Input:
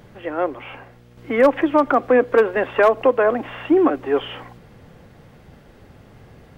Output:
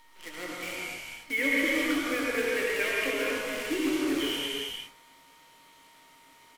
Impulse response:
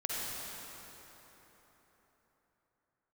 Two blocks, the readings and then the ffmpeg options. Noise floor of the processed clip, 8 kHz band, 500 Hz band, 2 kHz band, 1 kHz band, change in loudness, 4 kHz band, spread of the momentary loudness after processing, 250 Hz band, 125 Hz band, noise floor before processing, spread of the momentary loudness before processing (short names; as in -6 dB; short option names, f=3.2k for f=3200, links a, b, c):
-57 dBFS, n/a, -15.0 dB, -2.0 dB, -17.5 dB, -10.5 dB, +5.5 dB, 13 LU, -9.0 dB, -13.0 dB, -48 dBFS, 13 LU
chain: -filter_complex "[0:a]asplit=3[a][b][c];[a]bandpass=f=270:t=q:w=8,volume=0dB[d];[b]bandpass=f=2.29k:t=q:w=8,volume=-6dB[e];[c]bandpass=f=3.01k:t=q:w=8,volume=-9dB[f];[d][e][f]amix=inputs=3:normalize=0,equalizer=f=230:w=1.9:g=-15,aeval=exprs='val(0)+0.00158*sin(2*PI*930*n/s)':c=same,aemphasis=mode=production:type=riaa,acrusher=bits=8:dc=4:mix=0:aa=0.000001,asplit=2[g][h];[h]adelay=22,volume=-9dB[i];[g][i]amix=inputs=2:normalize=0[j];[1:a]atrim=start_sample=2205,afade=t=out:st=0.39:d=0.01,atrim=end_sample=17640,asetrate=29106,aresample=44100[k];[j][k]afir=irnorm=-1:irlink=0,volume=3.5dB"